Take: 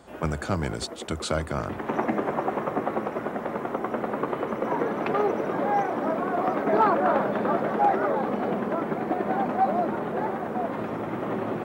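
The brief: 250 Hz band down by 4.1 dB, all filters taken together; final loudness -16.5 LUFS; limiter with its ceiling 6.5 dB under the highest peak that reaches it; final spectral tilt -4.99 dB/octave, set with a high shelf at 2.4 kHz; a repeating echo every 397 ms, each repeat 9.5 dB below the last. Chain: peaking EQ 250 Hz -5.5 dB; treble shelf 2.4 kHz -3.5 dB; peak limiter -18.5 dBFS; feedback delay 397 ms, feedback 33%, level -9.5 dB; trim +13 dB

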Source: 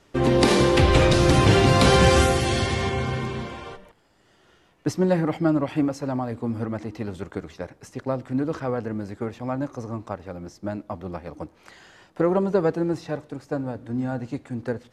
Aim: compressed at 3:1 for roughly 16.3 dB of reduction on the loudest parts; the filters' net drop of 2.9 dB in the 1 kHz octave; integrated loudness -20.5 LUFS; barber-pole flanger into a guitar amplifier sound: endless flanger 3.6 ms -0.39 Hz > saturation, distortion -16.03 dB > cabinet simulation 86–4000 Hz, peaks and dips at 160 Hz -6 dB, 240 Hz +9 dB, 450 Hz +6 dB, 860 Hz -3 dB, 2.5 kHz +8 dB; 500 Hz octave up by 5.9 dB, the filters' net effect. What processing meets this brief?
peaking EQ 500 Hz +4.5 dB; peaking EQ 1 kHz -4.5 dB; compression 3:1, threshold -35 dBFS; endless flanger 3.6 ms -0.39 Hz; saturation -30.5 dBFS; cabinet simulation 86–4000 Hz, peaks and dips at 160 Hz -6 dB, 240 Hz +9 dB, 450 Hz +6 dB, 860 Hz -3 dB, 2.5 kHz +8 dB; trim +16.5 dB

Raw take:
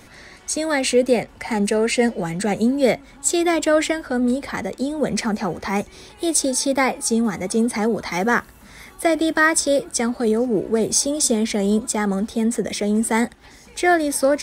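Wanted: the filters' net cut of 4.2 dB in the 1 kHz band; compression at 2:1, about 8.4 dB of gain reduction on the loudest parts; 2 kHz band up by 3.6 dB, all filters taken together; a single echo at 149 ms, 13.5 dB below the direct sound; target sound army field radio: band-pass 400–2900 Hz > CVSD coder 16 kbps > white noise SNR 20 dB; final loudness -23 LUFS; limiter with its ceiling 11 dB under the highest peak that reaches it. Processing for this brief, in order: peaking EQ 1 kHz -7.5 dB; peaking EQ 2 kHz +7 dB; compression 2:1, threshold -25 dBFS; peak limiter -21.5 dBFS; band-pass 400–2900 Hz; delay 149 ms -13.5 dB; CVSD coder 16 kbps; white noise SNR 20 dB; trim +11.5 dB

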